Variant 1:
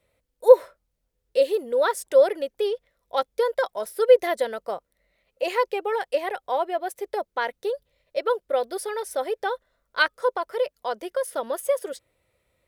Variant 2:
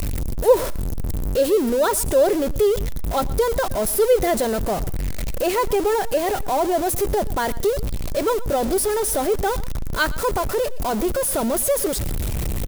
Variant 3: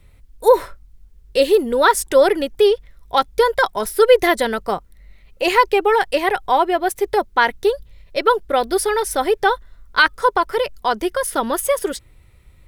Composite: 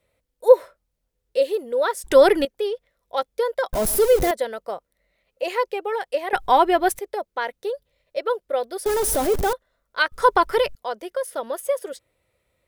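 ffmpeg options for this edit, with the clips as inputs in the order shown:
-filter_complex "[2:a]asplit=3[a][b][c];[1:a]asplit=2[d][e];[0:a]asplit=6[f][g][h][i][j][k];[f]atrim=end=2.042[l];[a]atrim=start=2.038:end=2.452[m];[g]atrim=start=2.448:end=3.732[n];[d]atrim=start=3.728:end=4.312[o];[h]atrim=start=4.308:end=6.332[p];[b]atrim=start=6.328:end=6.992[q];[i]atrim=start=6.988:end=8.862[r];[e]atrim=start=8.858:end=9.532[s];[j]atrim=start=9.528:end=10.122[t];[c]atrim=start=10.118:end=10.752[u];[k]atrim=start=10.748[v];[l][m]acrossfade=d=0.004:c1=hsin:c2=hsin[w];[w][n]acrossfade=d=0.004:c1=hsin:c2=hsin[x];[x][o]acrossfade=d=0.004:c1=hsin:c2=hsin[y];[y][p]acrossfade=d=0.004:c1=hsin:c2=hsin[z];[z][q]acrossfade=d=0.004:c1=hsin:c2=hsin[aa];[aa][r]acrossfade=d=0.004:c1=hsin:c2=hsin[ab];[ab][s]acrossfade=d=0.004:c1=hsin:c2=hsin[ac];[ac][t]acrossfade=d=0.004:c1=hsin:c2=hsin[ad];[ad][u]acrossfade=d=0.004:c1=hsin:c2=hsin[ae];[ae][v]acrossfade=d=0.004:c1=hsin:c2=hsin"

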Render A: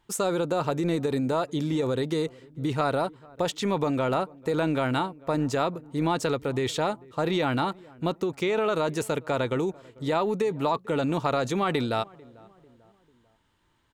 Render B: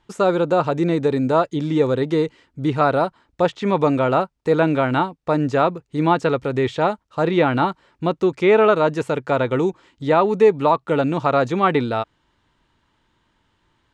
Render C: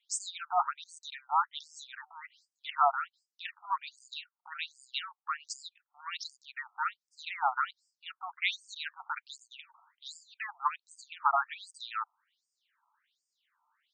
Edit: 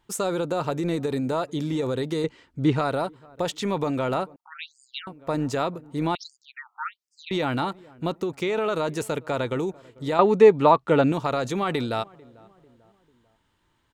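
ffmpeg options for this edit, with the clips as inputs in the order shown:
-filter_complex "[1:a]asplit=2[a][b];[2:a]asplit=2[c][d];[0:a]asplit=5[e][f][g][h][i];[e]atrim=end=2.242[j];[a]atrim=start=2.238:end=2.792[k];[f]atrim=start=2.788:end=4.362[l];[c]atrim=start=4.358:end=5.072[m];[g]atrim=start=5.068:end=6.152[n];[d]atrim=start=6.148:end=7.312[o];[h]atrim=start=7.308:end=10.192[p];[b]atrim=start=10.188:end=11.122[q];[i]atrim=start=11.118[r];[j][k]acrossfade=d=0.004:c1=hsin:c2=hsin[s];[s][l]acrossfade=d=0.004:c1=hsin:c2=hsin[t];[t][m]acrossfade=d=0.004:c1=hsin:c2=hsin[u];[u][n]acrossfade=d=0.004:c1=hsin:c2=hsin[v];[v][o]acrossfade=d=0.004:c1=hsin:c2=hsin[w];[w][p]acrossfade=d=0.004:c1=hsin:c2=hsin[x];[x][q]acrossfade=d=0.004:c1=hsin:c2=hsin[y];[y][r]acrossfade=d=0.004:c1=hsin:c2=hsin"

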